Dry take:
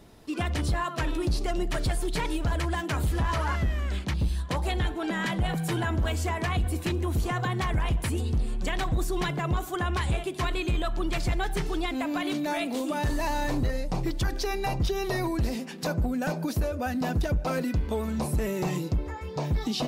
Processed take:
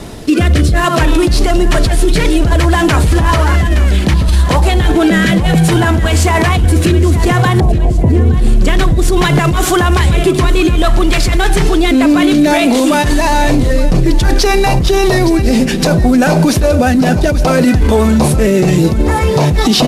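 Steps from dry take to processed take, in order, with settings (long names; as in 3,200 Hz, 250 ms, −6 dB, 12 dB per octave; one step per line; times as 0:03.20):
variable-slope delta modulation 64 kbit/s
0:07.60–0:08.34: inverse Chebyshev low-pass filter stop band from 1,400 Hz, stop band 40 dB
compressor whose output falls as the input rises −30 dBFS, ratio −1
rotating-speaker cabinet horn 0.6 Hz
repeating echo 867 ms, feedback 40%, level −16.5 dB
boost into a limiter +27 dB
level −1.5 dB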